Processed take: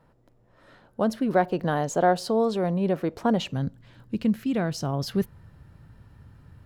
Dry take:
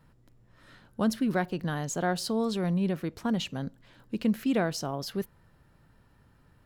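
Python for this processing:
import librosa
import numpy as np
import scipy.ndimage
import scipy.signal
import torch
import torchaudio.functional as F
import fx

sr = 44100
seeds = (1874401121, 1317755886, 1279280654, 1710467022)

y = fx.high_shelf(x, sr, hz=8600.0, db=-4.0)
y = fx.rider(y, sr, range_db=10, speed_s=0.5)
y = fx.peak_eq(y, sr, hz=fx.steps((0.0, 610.0), (3.52, 90.0)), db=11.0, octaves=1.9)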